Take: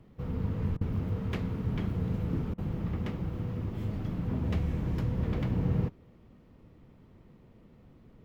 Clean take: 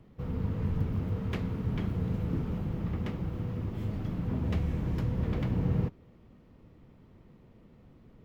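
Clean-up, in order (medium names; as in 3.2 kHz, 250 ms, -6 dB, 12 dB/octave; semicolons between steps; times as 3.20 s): interpolate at 0.77/2.54 s, 40 ms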